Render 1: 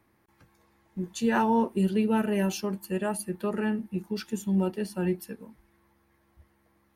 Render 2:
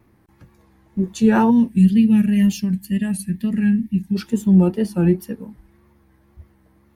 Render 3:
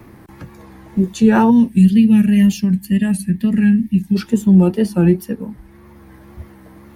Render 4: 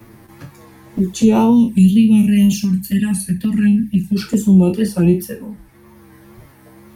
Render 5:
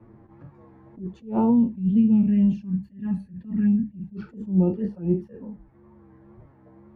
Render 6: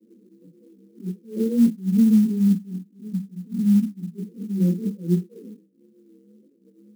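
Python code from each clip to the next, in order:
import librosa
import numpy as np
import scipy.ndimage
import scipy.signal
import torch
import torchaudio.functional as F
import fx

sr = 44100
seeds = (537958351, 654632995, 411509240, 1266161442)

y1 = fx.spec_box(x, sr, start_s=1.5, length_s=2.65, low_hz=280.0, high_hz=1600.0, gain_db=-17)
y1 = fx.low_shelf(y1, sr, hz=380.0, db=11.0)
y1 = fx.wow_flutter(y1, sr, seeds[0], rate_hz=2.1, depth_cents=80.0)
y1 = y1 * librosa.db_to_amplitude(4.0)
y2 = fx.band_squash(y1, sr, depth_pct=40)
y2 = y2 * librosa.db_to_amplitude(4.0)
y3 = fx.spec_trails(y2, sr, decay_s=0.31)
y3 = fx.high_shelf(y3, sr, hz=3800.0, db=7.5)
y3 = fx.env_flanger(y3, sr, rest_ms=10.0, full_db=-8.5)
y4 = scipy.signal.sosfilt(scipy.signal.butter(2, 1000.0, 'lowpass', fs=sr, output='sos'), y3)
y4 = fx.attack_slew(y4, sr, db_per_s=170.0)
y4 = y4 * librosa.db_to_amplitude(-7.0)
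y5 = scipy.signal.sosfilt(scipy.signal.cheby1(5, 1.0, [170.0, 510.0], 'bandpass', fs=sr, output='sos'), y4)
y5 = fx.chorus_voices(y5, sr, voices=2, hz=0.6, base_ms=19, depth_ms=3.2, mix_pct=65)
y5 = fx.clock_jitter(y5, sr, seeds[1], jitter_ms=0.027)
y5 = y5 * librosa.db_to_amplitude(4.0)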